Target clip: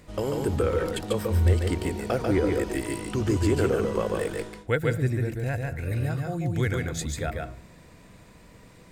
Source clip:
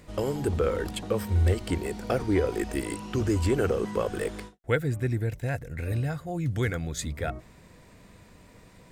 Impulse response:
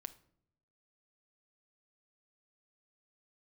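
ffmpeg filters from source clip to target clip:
-filter_complex "[0:a]asplit=2[link_01][link_02];[1:a]atrim=start_sample=2205,adelay=143[link_03];[link_02][link_03]afir=irnorm=-1:irlink=0,volume=1.5dB[link_04];[link_01][link_04]amix=inputs=2:normalize=0"

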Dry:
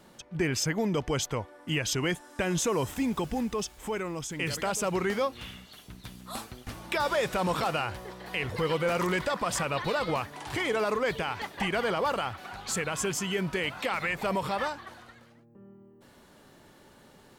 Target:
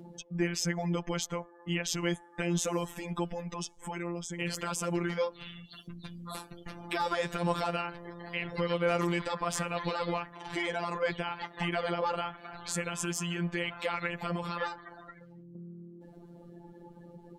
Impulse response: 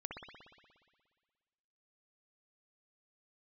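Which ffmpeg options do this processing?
-af "afftdn=noise_reduction=28:noise_floor=-49,afftfilt=real='hypot(re,im)*cos(PI*b)':imag='0':win_size=1024:overlap=0.75,acompressor=mode=upward:threshold=-36dB:ratio=2.5"

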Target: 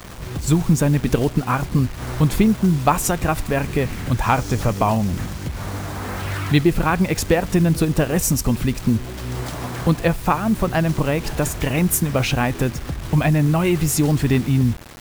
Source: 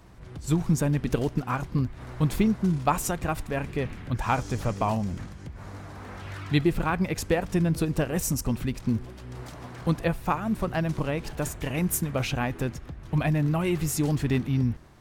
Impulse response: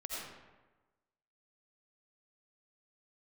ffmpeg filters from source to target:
-filter_complex "[0:a]asplit=2[link_01][link_02];[link_02]acompressor=threshold=-33dB:ratio=16,volume=3dB[link_03];[link_01][link_03]amix=inputs=2:normalize=0,acrusher=bits=6:mix=0:aa=0.000001,volume=5dB"

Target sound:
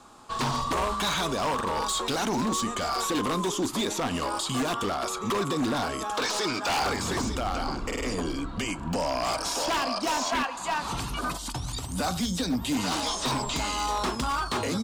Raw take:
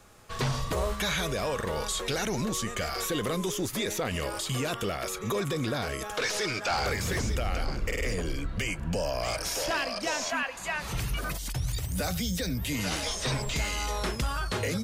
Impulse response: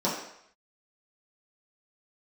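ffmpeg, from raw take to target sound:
-filter_complex "[0:a]equalizer=frequency=250:width_type=o:width=1:gain=9,equalizer=frequency=500:width_type=o:width=1:gain=-9,equalizer=frequency=1000:width_type=o:width=1:gain=9,equalizer=frequency=2000:width_type=o:width=1:gain=-11,equalizer=frequency=4000:width_type=o:width=1:gain=6,equalizer=frequency=8000:width_type=o:width=1:gain=11,asplit=2[link_01][link_02];[1:a]atrim=start_sample=2205,asetrate=57330,aresample=44100[link_03];[link_02][link_03]afir=irnorm=-1:irlink=0,volume=-25.5dB[link_04];[link_01][link_04]amix=inputs=2:normalize=0,aresample=32000,aresample=44100,bass=frequency=250:gain=-10,treble=frequency=4000:gain=-15,aeval=exprs='0.0501*(abs(mod(val(0)/0.0501+3,4)-2)-1)':channel_layout=same,volume=5dB"

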